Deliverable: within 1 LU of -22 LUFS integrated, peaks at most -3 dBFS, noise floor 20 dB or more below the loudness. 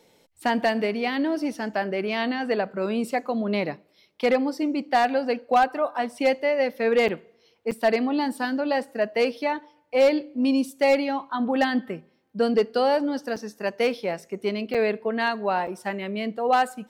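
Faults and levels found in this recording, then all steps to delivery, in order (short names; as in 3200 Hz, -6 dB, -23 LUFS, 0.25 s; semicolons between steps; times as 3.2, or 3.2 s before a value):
clipped 0.2%; flat tops at -12.5 dBFS; dropouts 5; longest dropout 6.2 ms; loudness -25.0 LUFS; peak -12.5 dBFS; loudness target -22.0 LUFS
-> clip repair -12.5 dBFS; interpolate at 7.08/7.71/13.36/14.74/15.67, 6.2 ms; gain +3 dB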